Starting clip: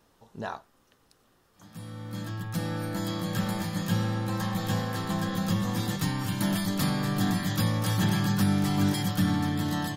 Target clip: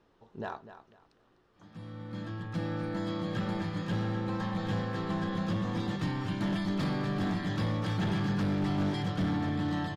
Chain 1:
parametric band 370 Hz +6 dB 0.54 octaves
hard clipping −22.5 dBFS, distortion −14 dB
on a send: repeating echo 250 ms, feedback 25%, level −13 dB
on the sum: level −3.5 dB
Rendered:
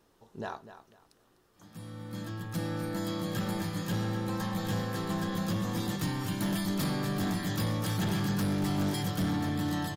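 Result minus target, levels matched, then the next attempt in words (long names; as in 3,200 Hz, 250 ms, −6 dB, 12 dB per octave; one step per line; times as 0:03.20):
4,000 Hz band +3.0 dB
low-pass filter 3,500 Hz 12 dB per octave
parametric band 370 Hz +6 dB 0.54 octaves
hard clipping −22.5 dBFS, distortion −14 dB
on a send: repeating echo 250 ms, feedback 25%, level −13 dB
on the sum: level −3.5 dB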